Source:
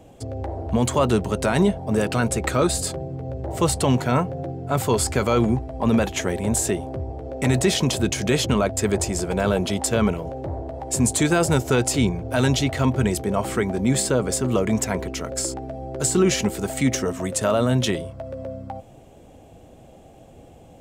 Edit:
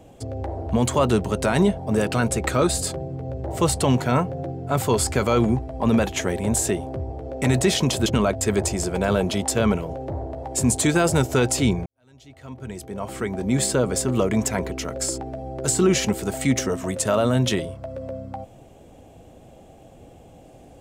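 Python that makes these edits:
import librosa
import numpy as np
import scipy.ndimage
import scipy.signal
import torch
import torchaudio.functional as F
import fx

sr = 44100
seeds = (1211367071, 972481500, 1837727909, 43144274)

y = fx.edit(x, sr, fx.cut(start_s=8.06, length_s=0.36),
    fx.fade_in_span(start_s=12.22, length_s=1.8, curve='qua'), tone=tone)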